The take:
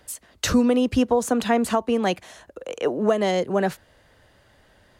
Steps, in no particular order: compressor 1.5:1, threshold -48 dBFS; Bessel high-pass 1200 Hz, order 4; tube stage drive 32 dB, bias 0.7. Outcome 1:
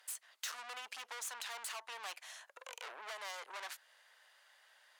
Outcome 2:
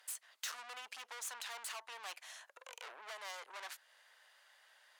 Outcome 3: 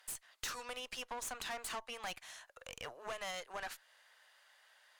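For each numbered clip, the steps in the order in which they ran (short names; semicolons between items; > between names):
tube stage > Bessel high-pass > compressor; tube stage > compressor > Bessel high-pass; Bessel high-pass > tube stage > compressor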